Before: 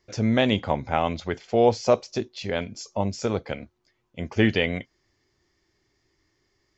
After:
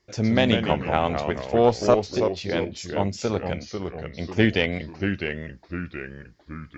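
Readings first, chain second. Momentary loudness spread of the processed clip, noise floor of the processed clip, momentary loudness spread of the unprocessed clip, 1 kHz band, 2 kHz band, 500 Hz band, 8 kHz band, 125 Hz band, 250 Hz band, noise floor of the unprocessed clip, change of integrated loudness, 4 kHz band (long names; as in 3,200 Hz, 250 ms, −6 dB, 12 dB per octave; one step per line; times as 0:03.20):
14 LU, −54 dBFS, 12 LU, +1.5 dB, +2.5 dB, +1.5 dB, can't be measured, +2.0 dB, +2.0 dB, −72 dBFS, +0.5 dB, +1.5 dB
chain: delay with pitch and tempo change per echo 98 ms, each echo −2 semitones, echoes 3, each echo −6 dB
harmonic generator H 2 −15 dB, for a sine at −5.5 dBFS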